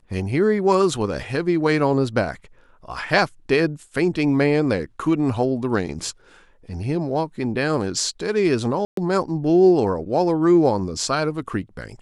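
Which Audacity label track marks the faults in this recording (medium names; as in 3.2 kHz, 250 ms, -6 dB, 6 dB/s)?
8.850000	8.970000	dropout 123 ms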